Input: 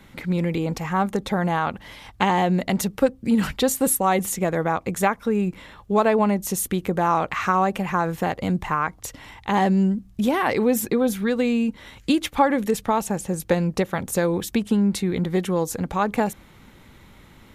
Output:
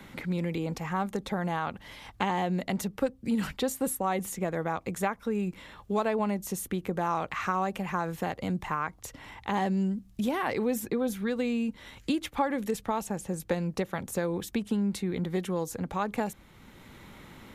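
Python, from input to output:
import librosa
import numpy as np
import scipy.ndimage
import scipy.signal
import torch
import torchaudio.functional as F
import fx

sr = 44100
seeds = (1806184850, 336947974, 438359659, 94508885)

y = fx.band_squash(x, sr, depth_pct=40)
y = y * librosa.db_to_amplitude(-8.5)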